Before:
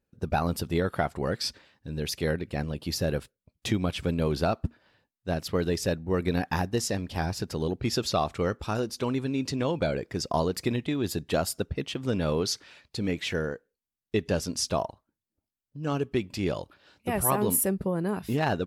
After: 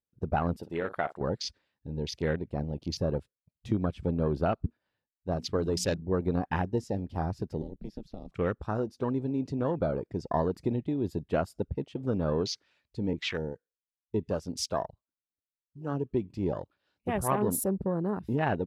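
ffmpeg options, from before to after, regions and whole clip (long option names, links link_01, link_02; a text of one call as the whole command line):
ffmpeg -i in.wav -filter_complex "[0:a]asettb=1/sr,asplit=3[link_01][link_02][link_03];[link_01]atrim=end=0.584[link_04];[link_02]atrim=start=0.58:end=1.21,asetpts=PTS-STARTPTS,afade=type=in:duration=0.004:curve=qsin,afade=type=out:start_time=0.626:duration=0.004:curve=qsin,highpass=frequency=480:poles=1,asplit=2[link_05][link_06];[link_06]adelay=50,volume=-13dB[link_07];[link_05][link_07]amix=inputs=2:normalize=0,atrim=end_sample=27783[link_08];[link_03]atrim=start=1.206[link_09];[link_04][link_08]acrossfade=duration=0.004:curve1=hsin:curve2=qsin[link_10];[link_10][link_09]acrossfade=duration=0.004:curve1=qsin:curve2=hsin,asettb=1/sr,asplit=3[link_11][link_12][link_13];[link_11]atrim=end=5.314[link_14];[link_12]atrim=start=5.31:end=6.02,asetpts=PTS-STARTPTS,afade=type=in:duration=0.004:curve=qsin,afade=type=out:start_time=0.706:duration=0.004:curve=qsin,equalizer=frequency=7500:width=0.56:gain=7,bandreject=frequency=60:width_type=h:width=6,bandreject=frequency=120:width_type=h:width=6,bandreject=frequency=180:width_type=h:width=6,bandreject=frequency=240:width_type=h:width=6[link_15];[link_13]atrim=start=6.016[link_16];[link_14][link_15]acrossfade=duration=0.004:curve1=hsin:curve2=qsin[link_17];[link_17][link_16]acrossfade=duration=0.004:curve1=qsin:curve2=hsin,asettb=1/sr,asplit=3[link_18][link_19][link_20];[link_18]atrim=end=7.624[link_21];[link_19]atrim=start=7.62:end=8.32,asetpts=PTS-STARTPTS,afade=type=in:duration=0.004:curve=qsin,afade=type=out:start_time=0.696:duration=0.004:curve=qsin,acrossover=split=180|3700[link_22][link_23][link_24];[link_22]acompressor=threshold=-35dB:ratio=4[link_25];[link_23]acompressor=threshold=-39dB:ratio=4[link_26];[link_24]acompressor=threshold=-42dB:ratio=4[link_27];[link_25][link_26][link_27]amix=inputs=3:normalize=0,aeval=exprs='val(0)*sin(2*PI*100*n/s)':channel_layout=same,equalizer=frequency=7500:width_type=o:width=0.56:gain=-5.5[link_28];[link_20]atrim=start=8.316[link_29];[link_21][link_28]acrossfade=duration=0.004:curve1=hsin:curve2=qsin[link_30];[link_30][link_29]acrossfade=duration=0.004:curve1=qsin:curve2=hsin,asettb=1/sr,asplit=3[link_31][link_32][link_33];[link_31]atrim=end=13.134[link_34];[link_32]atrim=start=13.13:end=16.11,asetpts=PTS-STARTPTS,afade=type=in:duration=0.004:curve=qsin,afade=type=out:start_time=2.976:duration=0.004:curve=qsin,acrusher=bits=9:mode=log:mix=0:aa=0.000001,acrossover=split=430[link_35][link_36];[link_35]aeval=exprs='val(0)*(1-0.5/2+0.5/2*cos(2*PI*2.8*n/s))':channel_layout=same[link_37];[link_36]aeval=exprs='val(0)*(1-0.5/2-0.5/2*cos(2*PI*2.8*n/s))':channel_layout=same[link_38];[link_37][link_38]amix=inputs=2:normalize=0,adynamicequalizer=threshold=0.00447:dfrequency=2000:dqfactor=0.7:tfrequency=2000:tqfactor=0.7:attack=5:release=100:ratio=0.375:range=2:mode=boostabove:tftype=highshelf[link_39];[link_33]atrim=start=16.106[link_40];[link_34][link_39]acrossfade=duration=0.004:curve1=hsin:curve2=qsin[link_41];[link_41][link_40]acrossfade=duration=0.004:curve1=qsin:curve2=hsin,afwtdn=0.0178,highshelf=frequency=9900:gain=-10,volume=-1.5dB" out.wav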